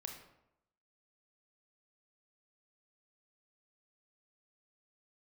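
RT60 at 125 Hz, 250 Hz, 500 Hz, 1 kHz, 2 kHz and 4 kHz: 0.80 s, 0.85 s, 0.85 s, 0.85 s, 0.65 s, 0.50 s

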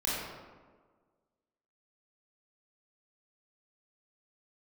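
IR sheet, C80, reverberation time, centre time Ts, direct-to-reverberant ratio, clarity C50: 0.5 dB, 1.5 s, 100 ms, -7.5 dB, -2.5 dB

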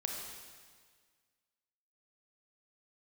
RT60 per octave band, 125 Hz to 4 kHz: 1.8 s, 1.8 s, 1.7 s, 1.7 s, 1.7 s, 1.7 s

